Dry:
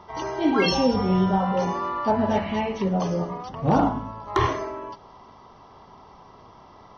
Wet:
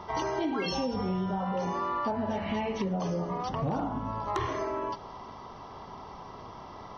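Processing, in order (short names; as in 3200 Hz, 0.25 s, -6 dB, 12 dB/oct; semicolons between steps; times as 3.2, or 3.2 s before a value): in parallel at +1 dB: limiter -19 dBFS, peak gain reduction 8.5 dB; on the sum: compressor 10:1, threshold -25 dBFS, peak gain reduction 13.5 dB; hard clip -18 dBFS, distortion -33 dB; gain -2.5 dB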